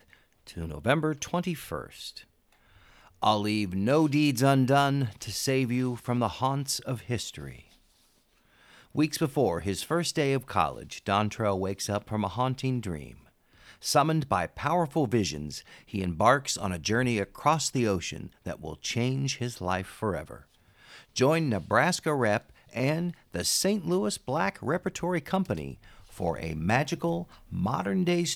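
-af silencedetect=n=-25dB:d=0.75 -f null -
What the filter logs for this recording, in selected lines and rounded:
silence_start: 1.78
silence_end: 3.23 | silence_duration: 1.45
silence_start: 7.22
silence_end: 8.98 | silence_duration: 1.75
silence_start: 12.96
silence_end: 13.87 | silence_duration: 0.91
silence_start: 20.18
silence_end: 21.17 | silence_duration: 1.00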